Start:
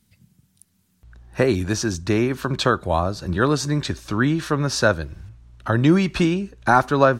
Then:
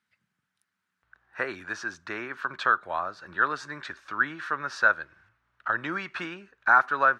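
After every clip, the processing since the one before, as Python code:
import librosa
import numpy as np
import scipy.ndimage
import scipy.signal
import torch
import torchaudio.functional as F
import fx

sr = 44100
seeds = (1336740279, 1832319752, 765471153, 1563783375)

y = fx.bandpass_q(x, sr, hz=1500.0, q=2.6)
y = y * 10.0 ** (2.0 / 20.0)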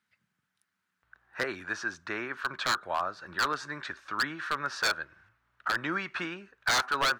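y = 10.0 ** (-19.5 / 20.0) * (np.abs((x / 10.0 ** (-19.5 / 20.0) + 3.0) % 4.0 - 2.0) - 1.0)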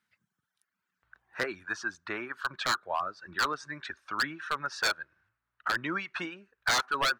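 y = fx.dereverb_blind(x, sr, rt60_s=1.3)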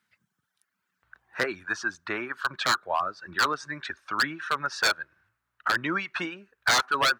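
y = scipy.signal.sosfilt(scipy.signal.butter(2, 47.0, 'highpass', fs=sr, output='sos'), x)
y = y * 10.0 ** (4.5 / 20.0)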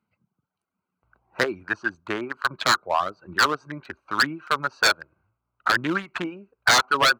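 y = fx.wiener(x, sr, points=25)
y = y * 10.0 ** (5.5 / 20.0)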